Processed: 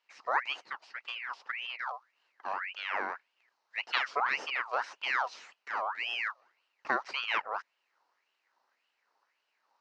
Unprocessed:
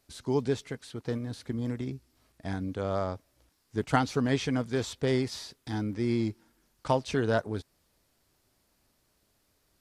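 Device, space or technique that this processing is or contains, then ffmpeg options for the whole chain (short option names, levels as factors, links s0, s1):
voice changer toy: -af "aeval=exprs='val(0)*sin(2*PI*1900*n/s+1900*0.55/1.8*sin(2*PI*1.8*n/s))':c=same,highpass=450,equalizer=f=920:t=q:w=4:g=4,equalizer=f=2400:t=q:w=4:g=-4,equalizer=f=3400:t=q:w=4:g=-10,lowpass=f=4700:w=0.5412,lowpass=f=4700:w=1.3066"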